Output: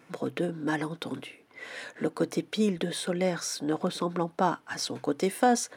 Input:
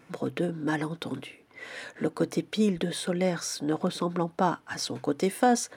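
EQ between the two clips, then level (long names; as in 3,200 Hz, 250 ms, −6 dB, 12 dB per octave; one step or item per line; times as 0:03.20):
high-pass filter 150 Hz 6 dB per octave
0.0 dB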